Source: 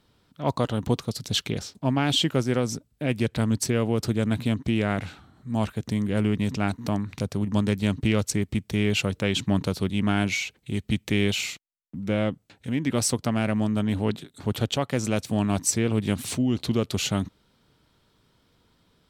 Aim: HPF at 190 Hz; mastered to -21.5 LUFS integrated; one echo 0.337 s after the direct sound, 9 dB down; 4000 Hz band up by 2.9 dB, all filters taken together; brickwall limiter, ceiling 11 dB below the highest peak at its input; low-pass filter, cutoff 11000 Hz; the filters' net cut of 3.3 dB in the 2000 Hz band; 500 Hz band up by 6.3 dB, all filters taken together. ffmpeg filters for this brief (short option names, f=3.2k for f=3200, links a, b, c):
-af "highpass=190,lowpass=11k,equalizer=f=500:t=o:g=8,equalizer=f=2k:t=o:g=-7,equalizer=f=4k:t=o:g=6.5,alimiter=limit=-18.5dB:level=0:latency=1,aecho=1:1:337:0.355,volume=8dB"